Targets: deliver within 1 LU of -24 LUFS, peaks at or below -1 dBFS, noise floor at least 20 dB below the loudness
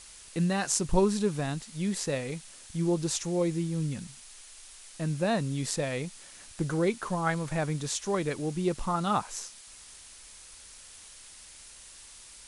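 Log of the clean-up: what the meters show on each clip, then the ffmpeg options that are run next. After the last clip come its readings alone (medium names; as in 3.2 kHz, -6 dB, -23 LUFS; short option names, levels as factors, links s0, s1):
noise floor -50 dBFS; noise floor target -51 dBFS; loudness -30.5 LUFS; peak level -10.5 dBFS; loudness target -24.0 LUFS
-> -af "afftdn=nr=6:nf=-50"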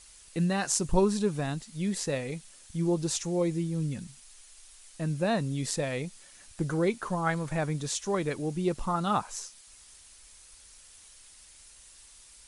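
noise floor -54 dBFS; loudness -30.5 LUFS; peak level -10.5 dBFS; loudness target -24.0 LUFS
-> -af "volume=2.11"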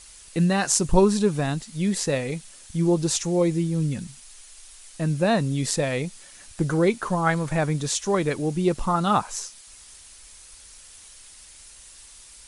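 loudness -24.0 LUFS; peak level -4.0 dBFS; noise floor -48 dBFS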